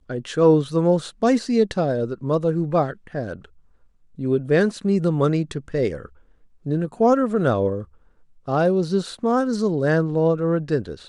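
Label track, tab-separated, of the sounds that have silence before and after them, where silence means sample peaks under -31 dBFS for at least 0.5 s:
4.190000	6.060000	sound
6.660000	7.830000	sound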